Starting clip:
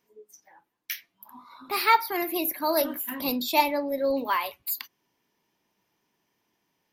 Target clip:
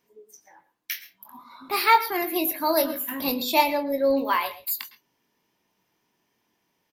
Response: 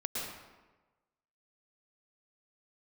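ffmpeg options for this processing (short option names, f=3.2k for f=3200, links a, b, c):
-filter_complex "[0:a]asplit=2[a][b];[b]adelay=22,volume=-9.5dB[c];[a][c]amix=inputs=2:normalize=0,asplit=2[d][e];[1:a]atrim=start_sample=2205,atrim=end_sample=6174[f];[e][f]afir=irnorm=-1:irlink=0,volume=-11.5dB[g];[d][g]amix=inputs=2:normalize=0"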